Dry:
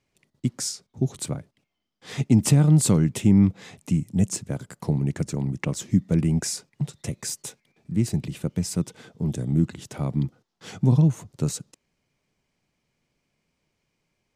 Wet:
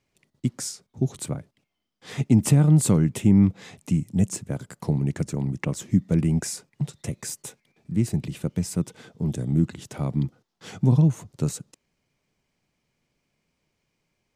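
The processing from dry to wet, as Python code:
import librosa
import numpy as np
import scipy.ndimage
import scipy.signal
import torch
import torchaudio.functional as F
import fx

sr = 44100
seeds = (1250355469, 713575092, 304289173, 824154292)

y = fx.dynamic_eq(x, sr, hz=4800.0, q=1.0, threshold_db=-44.0, ratio=4.0, max_db=-5)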